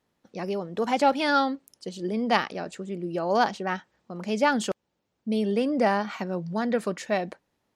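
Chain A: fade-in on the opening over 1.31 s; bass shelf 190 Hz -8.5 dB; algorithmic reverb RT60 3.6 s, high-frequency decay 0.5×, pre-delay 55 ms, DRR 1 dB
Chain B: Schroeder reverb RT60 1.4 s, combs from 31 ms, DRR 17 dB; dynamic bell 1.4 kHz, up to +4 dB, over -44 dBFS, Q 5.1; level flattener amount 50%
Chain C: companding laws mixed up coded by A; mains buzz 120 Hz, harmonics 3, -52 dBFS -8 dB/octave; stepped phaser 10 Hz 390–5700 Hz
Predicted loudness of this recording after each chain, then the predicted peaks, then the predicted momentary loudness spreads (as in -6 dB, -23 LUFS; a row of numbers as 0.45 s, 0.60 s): -26.0 LUFS, -23.0 LUFS, -31.0 LUFS; -5.5 dBFS, -4.0 dBFS, -12.5 dBFS; 9 LU, 9 LU, 15 LU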